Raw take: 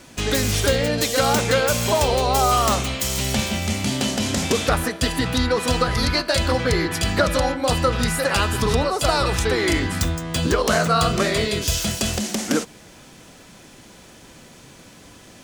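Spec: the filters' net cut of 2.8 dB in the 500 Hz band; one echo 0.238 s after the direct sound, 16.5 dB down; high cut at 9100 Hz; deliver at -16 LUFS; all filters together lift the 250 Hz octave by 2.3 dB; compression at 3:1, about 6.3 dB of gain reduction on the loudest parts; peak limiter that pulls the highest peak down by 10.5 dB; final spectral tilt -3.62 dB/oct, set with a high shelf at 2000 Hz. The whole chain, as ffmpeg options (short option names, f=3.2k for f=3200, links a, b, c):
-af "lowpass=9.1k,equalizer=f=250:t=o:g=4,equalizer=f=500:t=o:g=-4.5,highshelf=f=2k:g=3,acompressor=threshold=-23dB:ratio=3,alimiter=limit=-19dB:level=0:latency=1,aecho=1:1:238:0.15,volume=12dB"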